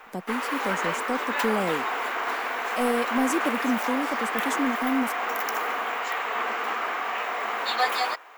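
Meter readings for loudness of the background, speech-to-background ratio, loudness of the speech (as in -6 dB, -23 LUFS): -27.5 LUFS, -2.0 dB, -29.5 LUFS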